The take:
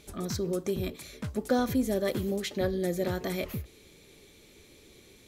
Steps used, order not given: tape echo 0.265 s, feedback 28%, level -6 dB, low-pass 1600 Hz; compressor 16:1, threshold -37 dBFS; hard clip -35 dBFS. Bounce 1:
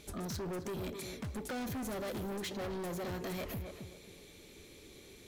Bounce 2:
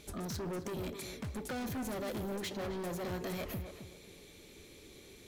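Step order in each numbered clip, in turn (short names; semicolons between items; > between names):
tape echo > hard clip > compressor; hard clip > compressor > tape echo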